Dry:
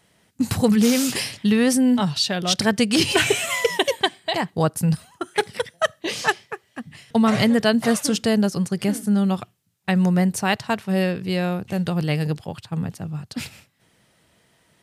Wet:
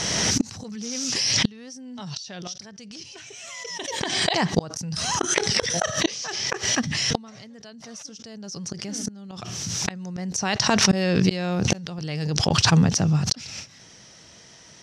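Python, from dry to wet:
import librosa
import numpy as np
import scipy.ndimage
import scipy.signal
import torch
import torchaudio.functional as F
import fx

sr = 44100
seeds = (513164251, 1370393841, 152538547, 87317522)

p1 = fx.rider(x, sr, range_db=3, speed_s=0.5)
p2 = x + (p1 * 10.0 ** (1.0 / 20.0))
p3 = fx.lowpass_res(p2, sr, hz=5800.0, q=8.1)
p4 = fx.gate_flip(p3, sr, shuts_db=-8.0, range_db=-33)
y = fx.pre_swell(p4, sr, db_per_s=22.0)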